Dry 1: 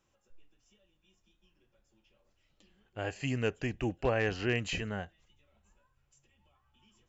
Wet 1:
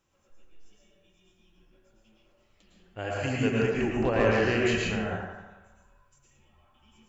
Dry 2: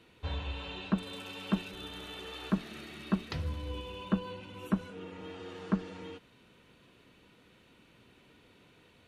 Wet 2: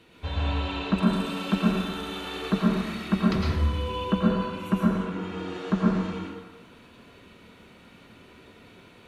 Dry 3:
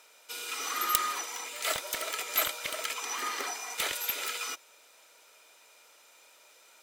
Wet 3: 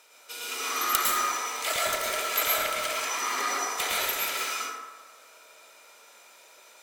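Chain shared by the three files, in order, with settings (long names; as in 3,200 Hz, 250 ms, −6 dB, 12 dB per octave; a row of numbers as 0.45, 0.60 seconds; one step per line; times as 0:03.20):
on a send: feedback echo with a band-pass in the loop 86 ms, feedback 67%, band-pass 1,200 Hz, level −8 dB
on the sum: dense smooth reverb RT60 0.99 s, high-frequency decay 0.5×, pre-delay 95 ms, DRR −4 dB
loudness normalisation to −27 LKFS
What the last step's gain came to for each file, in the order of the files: +1.0, +4.0, 0.0 decibels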